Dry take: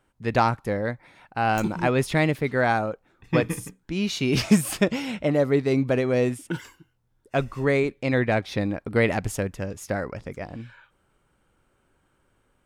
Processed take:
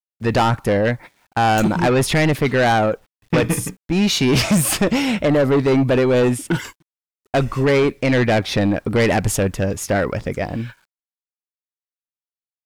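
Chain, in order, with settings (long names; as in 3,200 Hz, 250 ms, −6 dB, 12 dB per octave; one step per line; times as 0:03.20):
noise gate −43 dBFS, range −21 dB
in parallel at −1 dB: brickwall limiter −15.5 dBFS, peak gain reduction 11 dB
on the sum: bit reduction 11 bits
soft clipping −18.5 dBFS, distortion −9 dB
level +7 dB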